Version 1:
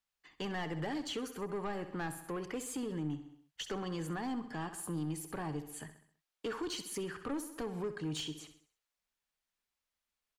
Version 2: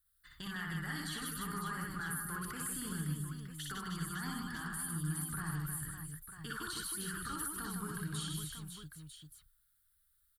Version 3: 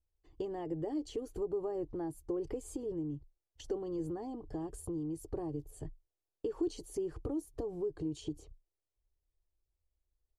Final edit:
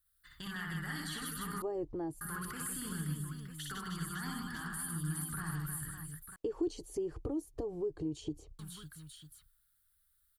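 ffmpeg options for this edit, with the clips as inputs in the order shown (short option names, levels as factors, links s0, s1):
-filter_complex "[2:a]asplit=2[s0][s1];[1:a]asplit=3[s2][s3][s4];[s2]atrim=end=1.622[s5];[s0]atrim=start=1.618:end=2.212[s6];[s3]atrim=start=2.208:end=6.362[s7];[s1]atrim=start=6.358:end=8.592[s8];[s4]atrim=start=8.588[s9];[s5][s6]acrossfade=d=0.004:c1=hsin:c2=hsin[s10];[s10][s7]acrossfade=d=0.004:c1=hsin:c2=hsin[s11];[s11][s8]acrossfade=d=0.004:c1=hsin:c2=hsin[s12];[s12][s9]acrossfade=d=0.004:c1=hsin:c2=hsin"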